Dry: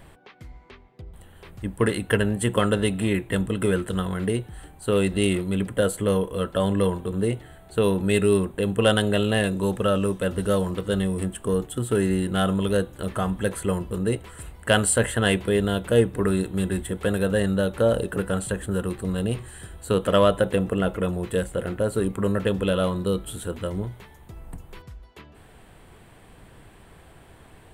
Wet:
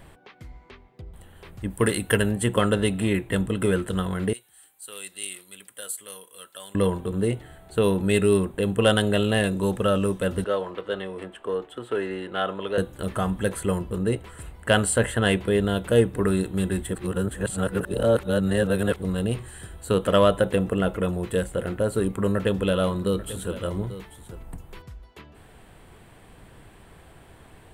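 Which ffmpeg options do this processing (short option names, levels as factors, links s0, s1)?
-filter_complex "[0:a]asettb=1/sr,asplit=3[s0][s1][s2];[s0]atrim=end=1.704[s3];[s1]atrim=start=1.7:end=2.32,asetpts=PTS-STARTPTS,afade=t=in:d=0.004:c=qsin,afade=t=out:st=0.616:d=0.004:c=qsin,aemphasis=mode=production:type=cd[s4];[s2]atrim=start=2.316[s5];[s3][s4]acrossfade=d=0.004:c1=hsin:c2=qsin[s6];[s6][s5]acrossfade=d=0.004:c1=qsin:c2=hsin,asettb=1/sr,asplit=3[s7][s8][s9];[s7]atrim=end=4.334[s10];[s8]atrim=start=4.33:end=6.75,asetpts=PTS-STARTPTS,afade=t=in:d=0.004:c=qsin,afade=t=out:st=2.416:d=0.004:c=qsin,aderivative[s11];[s9]atrim=start=6.746[s12];[s10][s11]acrossfade=d=0.004:c1=hsin:c2=qsin[s13];[s13][s12]acrossfade=d=0.004:c1=qsin:c2=hsin,asettb=1/sr,asplit=3[s14][s15][s16];[s14]atrim=end=10.444[s17];[s15]atrim=start=10.44:end=12.78,asetpts=PTS-STARTPTS,afade=t=in:d=0.004:c=qsin,afade=t=out:st=2.336:d=0.004:c=qsin,acrossover=split=350 3900:gain=0.112 1 0.0891[s18][s19][s20];[s18][s19][s20]amix=inputs=3:normalize=0[s21];[s16]atrim=start=12.776[s22];[s17][s21]acrossfade=d=0.004:c1=hsin:c2=qsin[s23];[s23][s22]acrossfade=d=0.004:c1=qsin:c2=hsin,asettb=1/sr,asplit=3[s24][s25][s26];[s24]atrim=end=13.814[s27];[s25]atrim=start=13.81:end=15.76,asetpts=PTS-STARTPTS,afade=t=in:d=0.004:c=qsin,afade=t=out:st=1.946:d=0.004:c=qsin,highshelf=f=4300:g=-4[s28];[s26]atrim=start=15.756[s29];[s27][s28]acrossfade=d=0.004:c1=hsin:c2=qsin[s30];[s30][s29]acrossfade=d=0.004:c1=qsin:c2=hsin,asettb=1/sr,asplit=3[s31][s32][s33];[s31]atrim=end=22.044[s34];[s32]atrim=start=22.04:end=24.43,asetpts=PTS-STARTPTS,afade=t=in:d=0.004:c=qsin,afade=t=out:st=2.386:d=0.004:c=qsin,aecho=1:1:841:0.188,atrim=end_sample=105399[s35];[s33]atrim=start=24.426[s36];[s34][s35]acrossfade=d=0.004:c1=hsin:c2=qsin[s37];[s37][s36]acrossfade=d=0.004:c1=qsin:c2=hsin,asplit=3[s38][s39][s40];[s38]atrim=end=16.952[s41];[s39]atrim=start=16.948:end=19.022,asetpts=PTS-STARTPTS,areverse[s42];[s40]atrim=start=19.018[s43];[s41][s42]acrossfade=d=0.004:c1=hsin:c2=hsin[s44];[s44][s43]acrossfade=d=0.004:c1=hsin:c2=hsin"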